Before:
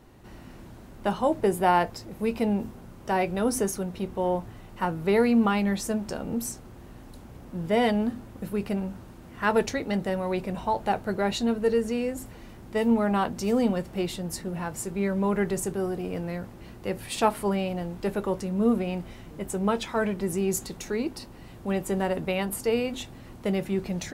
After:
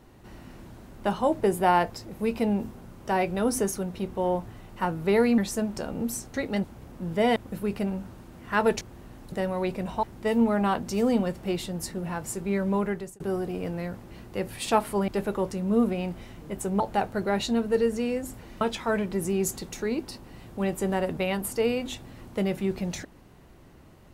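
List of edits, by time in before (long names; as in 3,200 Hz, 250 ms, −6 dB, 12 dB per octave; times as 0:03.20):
0:05.38–0:05.70: remove
0:06.66–0:07.17: swap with 0:09.71–0:10.01
0:07.89–0:08.26: remove
0:10.72–0:12.53: move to 0:19.69
0:15.25–0:15.70: fade out
0:17.58–0:17.97: remove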